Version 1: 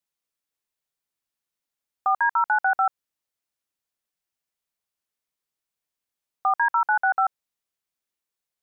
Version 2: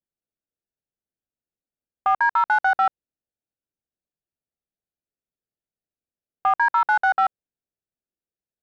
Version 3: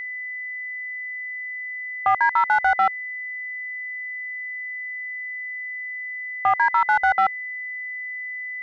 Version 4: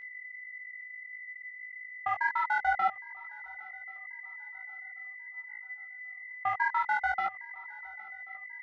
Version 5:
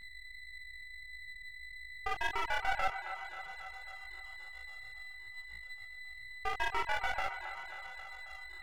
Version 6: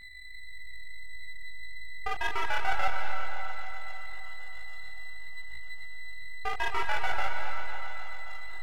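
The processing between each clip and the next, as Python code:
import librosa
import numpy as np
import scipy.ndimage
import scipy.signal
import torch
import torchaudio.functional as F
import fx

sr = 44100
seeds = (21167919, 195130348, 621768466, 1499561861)

y1 = fx.wiener(x, sr, points=41)
y1 = y1 * librosa.db_to_amplitude(3.0)
y2 = fx.low_shelf(y1, sr, hz=250.0, db=9.5)
y2 = y2 + 10.0 ** (-29.0 / 20.0) * np.sin(2.0 * np.pi * 2000.0 * np.arange(len(y2)) / sr)
y3 = fx.echo_swing(y2, sr, ms=1086, ratio=3, feedback_pct=36, wet_db=-14.0)
y3 = fx.level_steps(y3, sr, step_db=19)
y3 = fx.chorus_voices(y3, sr, voices=6, hz=1.5, base_ms=19, depth_ms=3.0, mix_pct=40)
y3 = y3 * librosa.db_to_amplitude(-4.5)
y4 = np.maximum(y3, 0.0)
y4 = fx.echo_wet_bandpass(y4, sr, ms=269, feedback_pct=59, hz=1200.0, wet_db=-9.0)
y4 = y4 * librosa.db_to_amplitude(-1.5)
y5 = fx.rev_freeverb(y4, sr, rt60_s=2.9, hf_ratio=0.95, predelay_ms=100, drr_db=5.0)
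y5 = y5 * librosa.db_to_amplitude(2.5)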